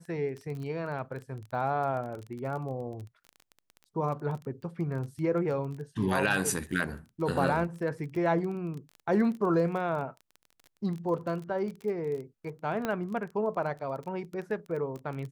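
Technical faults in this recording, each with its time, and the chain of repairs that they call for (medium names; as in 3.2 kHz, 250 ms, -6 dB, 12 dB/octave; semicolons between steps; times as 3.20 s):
crackle 20 per s -36 dBFS
12.85 s: pop -17 dBFS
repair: de-click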